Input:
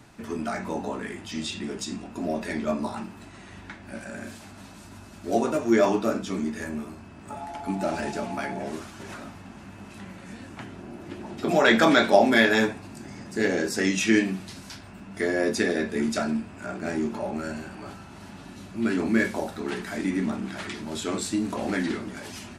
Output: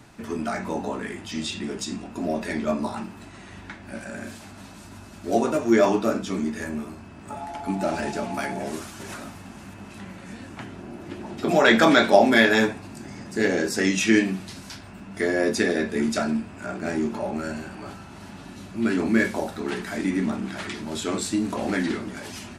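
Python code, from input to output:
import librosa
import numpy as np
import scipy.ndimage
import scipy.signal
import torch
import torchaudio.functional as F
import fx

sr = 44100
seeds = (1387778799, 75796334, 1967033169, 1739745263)

y = fx.high_shelf(x, sr, hz=6900.0, db=10.0, at=(8.34, 9.74))
y = y * 10.0 ** (2.0 / 20.0)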